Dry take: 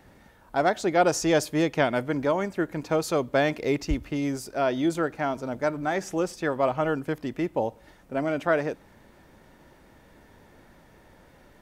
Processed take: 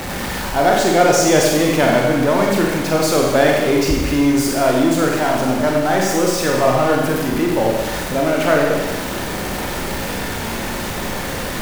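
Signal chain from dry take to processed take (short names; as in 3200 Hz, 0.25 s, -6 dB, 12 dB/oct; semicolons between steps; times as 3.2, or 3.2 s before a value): zero-crossing step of -26 dBFS; Schroeder reverb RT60 1.2 s, combs from 31 ms, DRR -1.5 dB; gain +4 dB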